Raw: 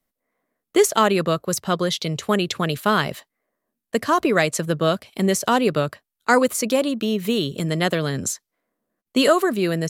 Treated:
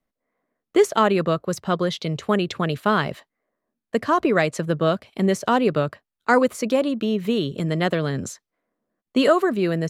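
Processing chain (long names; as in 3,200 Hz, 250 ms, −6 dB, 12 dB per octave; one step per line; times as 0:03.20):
low-pass filter 2,300 Hz 6 dB per octave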